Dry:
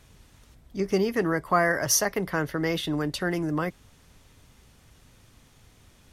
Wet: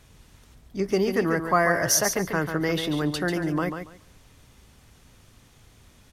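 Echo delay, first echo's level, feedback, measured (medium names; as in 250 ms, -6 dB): 141 ms, -7.5 dB, 19%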